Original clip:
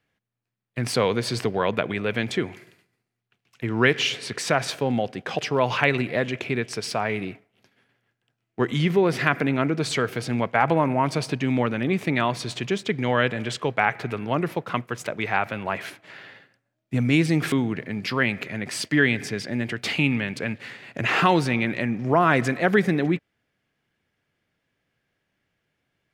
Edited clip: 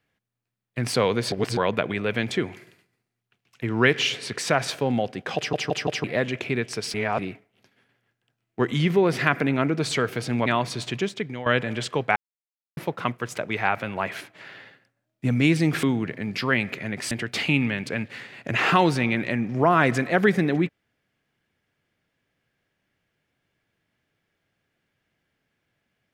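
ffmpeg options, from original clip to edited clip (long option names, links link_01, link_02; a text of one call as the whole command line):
ffmpeg -i in.wav -filter_complex "[0:a]asplit=14[link_01][link_02][link_03][link_04][link_05][link_06][link_07][link_08][link_09][link_10][link_11][link_12][link_13][link_14];[link_01]atrim=end=1.322[link_15];[link_02]atrim=start=1.318:end=1.572,asetpts=PTS-STARTPTS,areverse[link_16];[link_03]atrim=start=1.568:end=5.532[link_17];[link_04]atrim=start=5.358:end=5.532[link_18];[link_05]atrim=start=5.358:end=5.532[link_19];[link_06]atrim=start=5.358:end=5.532[link_20];[link_07]atrim=start=6.038:end=6.942[link_21];[link_08]atrim=start=6.938:end=7.192,asetpts=PTS-STARTPTS,areverse[link_22];[link_09]atrim=start=7.188:end=10.462[link_23];[link_10]atrim=start=12.148:end=13.15,asetpts=PTS-STARTPTS,afade=type=out:start_time=0.512:duration=0.49:silence=0.199526[link_24];[link_11]atrim=start=13.15:end=13.85,asetpts=PTS-STARTPTS,afade=type=in:duration=0.004:curve=hsin:silence=0.199526,afade=type=out:start_time=0.696:duration=0.004:curve=hsin[link_25];[link_12]atrim=start=13.85:end=14.46,asetpts=PTS-STARTPTS,volume=0[link_26];[link_13]atrim=start=14.46:end=18.802,asetpts=PTS-STARTPTS,afade=type=in:duration=0.004:curve=hsin[link_27];[link_14]atrim=start=19.608[link_28];[link_15][link_16]acrossfade=duration=0.004:curve1=hsin:curve2=hsin[link_29];[link_29][link_17]acrossfade=duration=0.004:curve1=hsin:curve2=hsin[link_30];[link_30][link_18]acrossfade=duration=0.004:curve1=hsin:curve2=hsin[link_31];[link_31][link_19]acrossfade=duration=0.004:curve1=hsin:curve2=hsin[link_32];[link_32][link_20]acrossfade=duration=0.004:curve1=hsin:curve2=hsin[link_33];[link_33][link_21]acrossfade=duration=0.004:curve1=hsin:curve2=hsin[link_34];[link_34][link_22]acrossfade=duration=0.004:curve1=hsin:curve2=hsin[link_35];[link_35][link_23]acrossfade=duration=0.004:curve1=hsin:curve2=hsin[link_36];[link_24][link_25][link_26][link_27]concat=n=4:v=0:a=1[link_37];[link_36][link_37]acrossfade=duration=0.004:curve1=hsin:curve2=hsin[link_38];[link_38][link_28]acrossfade=duration=0.004:curve1=hsin:curve2=hsin" out.wav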